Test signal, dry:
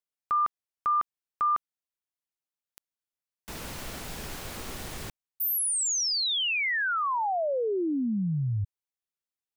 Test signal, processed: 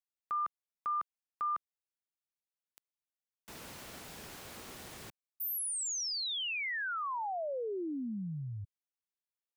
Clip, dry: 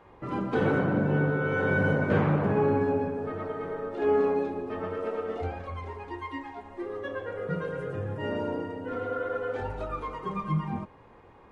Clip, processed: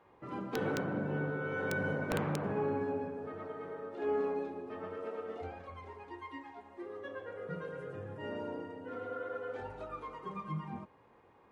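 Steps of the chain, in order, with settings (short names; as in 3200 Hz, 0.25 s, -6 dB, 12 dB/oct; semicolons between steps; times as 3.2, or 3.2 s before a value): HPF 140 Hz 6 dB/oct; wrapped overs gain 15 dB; gain -8.5 dB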